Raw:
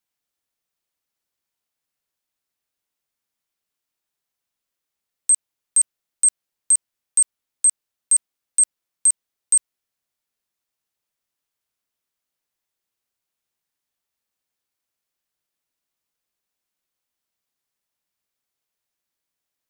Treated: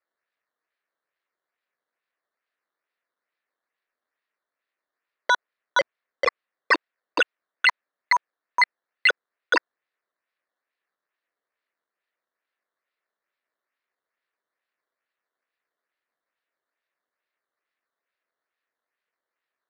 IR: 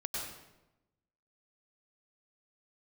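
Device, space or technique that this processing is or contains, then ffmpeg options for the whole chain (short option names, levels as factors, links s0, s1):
circuit-bent sampling toy: -af "acrusher=samples=12:mix=1:aa=0.000001:lfo=1:lforange=12:lforate=2.3,highpass=520,equalizer=f=840:t=q:w=4:g=-7,equalizer=f=1800:t=q:w=4:g=5,equalizer=f=3200:t=q:w=4:g=-5,lowpass=f=4700:w=0.5412,lowpass=f=4700:w=1.3066,volume=0.794"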